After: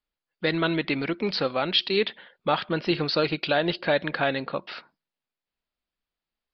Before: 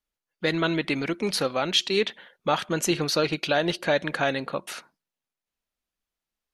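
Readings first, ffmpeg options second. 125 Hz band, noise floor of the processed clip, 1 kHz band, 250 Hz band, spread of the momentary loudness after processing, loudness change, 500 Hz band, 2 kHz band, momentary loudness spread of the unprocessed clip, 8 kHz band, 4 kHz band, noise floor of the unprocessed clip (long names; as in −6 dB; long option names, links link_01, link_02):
0.0 dB, below −85 dBFS, 0.0 dB, 0.0 dB, 8 LU, 0.0 dB, 0.0 dB, 0.0 dB, 9 LU, below −25 dB, 0.0 dB, below −85 dBFS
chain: -af "aresample=11025,aresample=44100"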